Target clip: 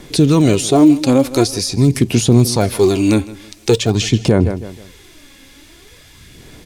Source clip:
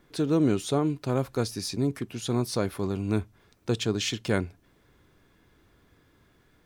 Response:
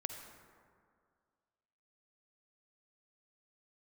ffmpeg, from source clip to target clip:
-filter_complex "[0:a]lowpass=11k,acrossover=split=1200[a][b];[a]aphaser=in_gain=1:out_gain=1:delay=3.7:decay=0.69:speed=0.46:type=sinusoidal[c];[b]acompressor=threshold=-48dB:ratio=12[d];[c][d]amix=inputs=2:normalize=0,aexciter=amount=3.3:drive=7.4:freq=2k,asplit=2[e][f];[f]aecho=0:1:159|318|477:0.112|0.0381|0.013[g];[e][g]amix=inputs=2:normalize=0,alimiter=level_in=14.5dB:limit=-1dB:release=50:level=0:latency=1,volume=-1dB"

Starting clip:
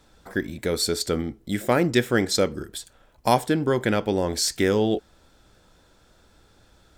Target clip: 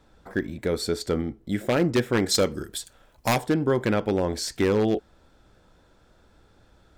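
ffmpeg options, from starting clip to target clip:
-af "asetnsamples=n=441:p=0,asendcmd='2.26 highshelf g 2.5;3.38 highshelf g -9',highshelf=f=3k:g=-10,aeval=exprs='0.211*(abs(mod(val(0)/0.211+3,4)-2)-1)':c=same"

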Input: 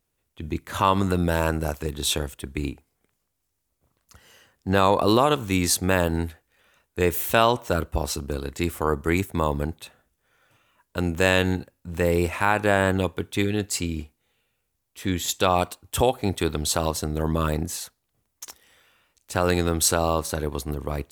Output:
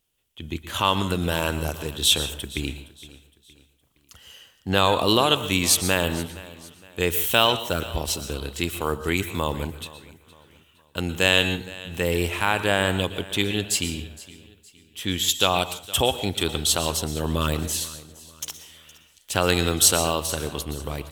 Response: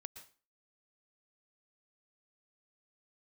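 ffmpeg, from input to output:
-filter_complex "[0:a]equalizer=f=3.1k:t=o:w=0.45:g=12,dynaudnorm=f=440:g=9:m=11.5dB,aecho=1:1:465|930|1395:0.106|0.0413|0.0161,asplit=2[a][b];[1:a]atrim=start_sample=2205,highshelf=f=3.1k:g=9.5[c];[b][c]afir=irnorm=-1:irlink=0,volume=8.5dB[d];[a][d]amix=inputs=2:normalize=0,volume=-10.5dB"

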